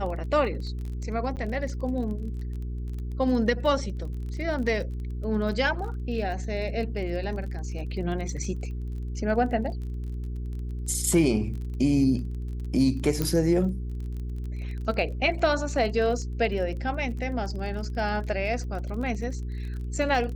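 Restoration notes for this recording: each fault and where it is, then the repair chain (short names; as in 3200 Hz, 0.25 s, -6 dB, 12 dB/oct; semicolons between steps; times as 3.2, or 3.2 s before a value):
crackle 26/s -35 dBFS
hum 60 Hz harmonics 7 -32 dBFS
1.36–1.37 gap 8.9 ms
13.22 pop -12 dBFS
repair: de-click; de-hum 60 Hz, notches 7; interpolate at 1.36, 8.9 ms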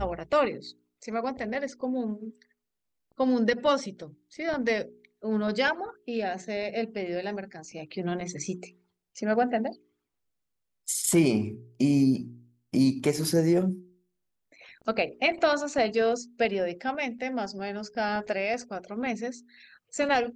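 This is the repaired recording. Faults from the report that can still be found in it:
none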